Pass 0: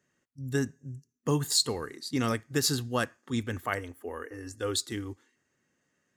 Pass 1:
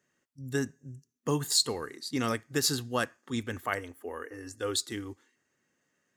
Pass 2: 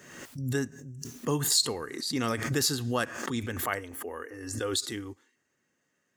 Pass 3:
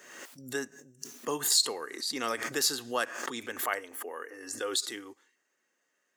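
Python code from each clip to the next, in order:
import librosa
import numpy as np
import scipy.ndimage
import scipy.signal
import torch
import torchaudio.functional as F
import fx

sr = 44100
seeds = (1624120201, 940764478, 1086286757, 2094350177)

y1 = fx.low_shelf(x, sr, hz=170.0, db=-6.5)
y2 = fx.pre_swell(y1, sr, db_per_s=50.0)
y3 = scipy.signal.sosfilt(scipy.signal.butter(2, 420.0, 'highpass', fs=sr, output='sos'), y2)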